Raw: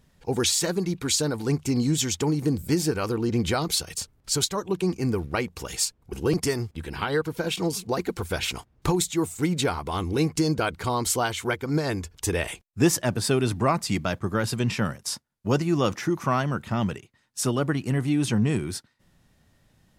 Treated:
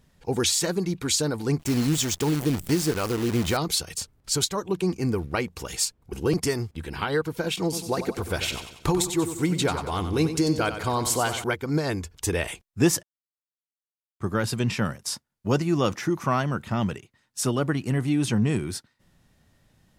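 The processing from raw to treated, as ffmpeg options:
ffmpeg -i in.wav -filter_complex "[0:a]asettb=1/sr,asplit=3[link_01][link_02][link_03];[link_01]atrim=end=1.594[link_04];[link_02]atrim=start=1.59:end=3.57,asetpts=PTS-STARTPTS,afade=type=in:duration=0.004:curve=qsin,afade=type=out:start_time=1.976:duration=0.004:curve=qsin,acrusher=bits=6:dc=4:mix=0:aa=0.000001[link_05];[link_03]atrim=start=3.566[link_06];[link_04][link_05]acrossfade=duration=0.004:curve1=hsin:curve2=qsin[link_07];[link_07][link_06]acrossfade=duration=0.004:curve1=qsin:curve2=hsin,asettb=1/sr,asplit=3[link_08][link_09][link_10];[link_08]atrim=end=7.634[link_11];[link_09]atrim=start=7.63:end=11.44,asetpts=PTS-STARTPTS,afade=type=in:duration=0.004:curve=qsin,afade=type=out:start_time=3.806:duration=0.004:curve=qsin,aecho=1:1:93|186|279|372|465:0.316|0.155|0.0759|0.0372|0.0182,atrim=end_sample=168021[link_12];[link_10]atrim=start=11.436[link_13];[link_11][link_12]acrossfade=duration=0.004:curve1=hsin:curve2=qsin[link_14];[link_14][link_13]acrossfade=duration=0.004:curve1=qsin:curve2=hsin,asplit=3[link_15][link_16][link_17];[link_15]atrim=end=13.03,asetpts=PTS-STARTPTS,afade=type=out:start_time=13.026:duration=0.004:curve=hsin[link_18];[link_16]atrim=start=13.03:end=14.2,asetpts=PTS-STARTPTS,volume=0[link_19];[link_17]atrim=start=14.2,asetpts=PTS-STARTPTS,afade=type=in:duration=0.004:curve=hsin[link_20];[link_18][link_19][link_20]concat=n=3:v=0:a=1" out.wav

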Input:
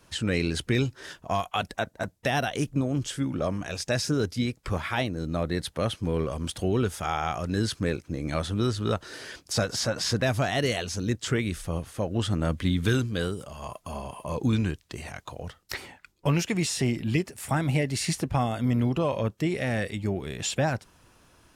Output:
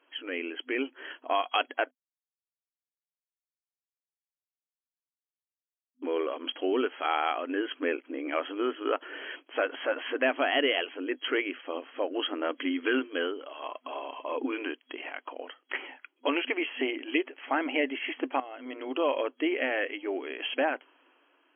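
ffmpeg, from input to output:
ffmpeg -i in.wav -filter_complex "[0:a]asplit=4[link_01][link_02][link_03][link_04];[link_01]atrim=end=1.91,asetpts=PTS-STARTPTS,afade=type=out:start_time=1.906:duration=0.004:curve=hsin[link_05];[link_02]atrim=start=1.91:end=6.02,asetpts=PTS-STARTPTS,volume=0[link_06];[link_03]atrim=start=6.02:end=18.4,asetpts=PTS-STARTPTS,afade=type=in:duration=0.004:curve=hsin,afade=type=out:start_time=12.376:duration=0.004:curve=hsin:silence=0.141254[link_07];[link_04]atrim=start=18.4,asetpts=PTS-STARTPTS,afade=type=in:duration=0.68:silence=0.141254[link_08];[link_05][link_06][link_07][link_08]concat=n=4:v=0:a=1,afftfilt=real='re*between(b*sr/4096,250,3300)':imag='im*between(b*sr/4096,250,3300)':win_size=4096:overlap=0.75,dynaudnorm=framelen=160:gausssize=11:maxgain=8dB,aemphasis=mode=production:type=75fm,volume=-7dB" out.wav

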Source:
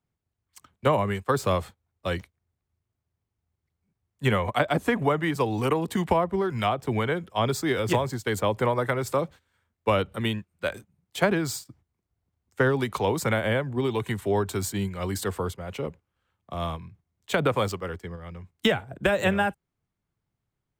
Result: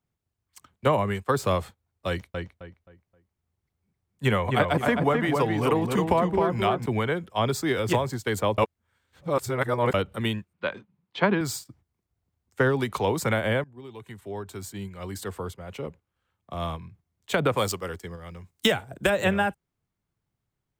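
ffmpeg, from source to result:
ffmpeg -i in.wav -filter_complex "[0:a]asettb=1/sr,asplit=3[link_01][link_02][link_03];[link_01]atrim=end=2.084[link_04];[link_02]atrim=start=2.08:end=6.86,asetpts=PTS-STARTPTS,afade=type=in:duration=0.004:curve=qsin,afade=type=out:start_time=4.776:duration=0.004:curve=qsin,asplit=2[link_05][link_06];[link_06]adelay=263,lowpass=frequency=2500:poles=1,volume=-3.5dB,asplit=2[link_07][link_08];[link_08]adelay=263,lowpass=frequency=2500:poles=1,volume=0.31,asplit=2[link_09][link_10];[link_10]adelay=263,lowpass=frequency=2500:poles=1,volume=0.31,asplit=2[link_11][link_12];[link_12]adelay=263,lowpass=frequency=2500:poles=1,volume=0.31[link_13];[link_05][link_07][link_09][link_11][link_13]amix=inputs=5:normalize=0,atrim=end_sample=210798[link_14];[link_03]atrim=start=6.856[link_15];[link_04][link_14]acrossfade=duration=0.004:curve1=hsin:curve2=qsin[link_16];[link_16][link_15]acrossfade=duration=0.004:curve1=qsin:curve2=hsin,asettb=1/sr,asplit=3[link_17][link_18][link_19];[link_17]atrim=end=10.534[link_20];[link_18]atrim=start=10.53:end=11.41,asetpts=PTS-STARTPTS,afade=type=in:duration=0.004:curve=qsin,afade=type=out:start_time=0.876:duration=0.004:curve=qsin,highpass=140,equalizer=frequency=200:width_type=q:width=4:gain=4,equalizer=frequency=670:width_type=q:width=4:gain=-4,equalizer=frequency=990:width_type=q:width=4:gain=6,lowpass=frequency=4100:width=0.5412,lowpass=frequency=4100:width=1.3066[link_21];[link_19]atrim=start=11.406[link_22];[link_20][link_21]acrossfade=duration=0.004:curve1=hsin:curve2=qsin[link_23];[link_23][link_22]acrossfade=duration=0.004:curve1=qsin:curve2=hsin,asettb=1/sr,asplit=3[link_24][link_25][link_26];[link_24]atrim=end=17.574[link_27];[link_25]atrim=start=17.57:end=19.1,asetpts=PTS-STARTPTS,afade=type=in:duration=0.004:curve=qsin,afade=type=out:start_time=1.526:duration=0.004:curve=qsin,bass=frequency=250:gain=-2,treble=frequency=4000:gain=9[link_28];[link_26]atrim=start=19.096[link_29];[link_27][link_28]acrossfade=duration=0.004:curve1=hsin:curve2=qsin[link_30];[link_30][link_29]acrossfade=duration=0.004:curve1=qsin:curve2=hsin,asplit=4[link_31][link_32][link_33][link_34];[link_31]atrim=end=8.582[link_35];[link_32]atrim=start=8.578:end=9.942,asetpts=PTS-STARTPTS,areverse[link_36];[link_33]atrim=start=9.938:end=13.64,asetpts=PTS-STARTPTS,afade=type=out:start_time=3.698:duration=0.004:curve=hsin:silence=0.0891251[link_37];[link_34]atrim=start=13.64,asetpts=PTS-STARTPTS,afade=type=in:duration=3.2:silence=0.0891251[link_38];[link_35][link_36]acrossfade=duration=0.004:curve1=hsin:curve2=hsin[link_39];[link_37][link_38]concat=n=2:v=0:a=1[link_40];[link_39][link_40]acrossfade=duration=0.004:curve1=hsin:curve2=hsin" out.wav

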